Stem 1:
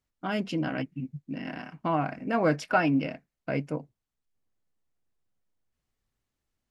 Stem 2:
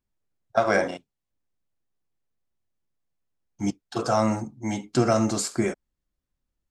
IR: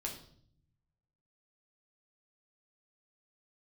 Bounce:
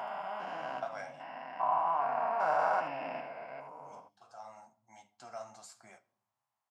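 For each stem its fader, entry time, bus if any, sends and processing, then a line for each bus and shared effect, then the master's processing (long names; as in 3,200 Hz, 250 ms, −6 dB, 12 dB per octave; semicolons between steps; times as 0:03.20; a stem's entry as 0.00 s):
−2.0 dB, 0.00 s, send −22.5 dB, echo send −8 dB, spectrum averaged block by block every 400 ms; graphic EQ with 15 bands 100 Hz −11 dB, 400 Hz +7 dB, 1,000 Hz +11 dB, 4,000 Hz −3 dB
0:03.75 −10 dB → 0:04.44 −21.5 dB, 0.25 s, send −11.5 dB, no echo send, automatic ducking −23 dB, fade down 1.65 s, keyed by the first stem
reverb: on, RT60 0.60 s, pre-delay 5 ms
echo: single-tap delay 77 ms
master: high-pass filter 100 Hz; flanger 1.4 Hz, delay 7.1 ms, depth 6.3 ms, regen −45%; low shelf with overshoot 520 Hz −12 dB, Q 3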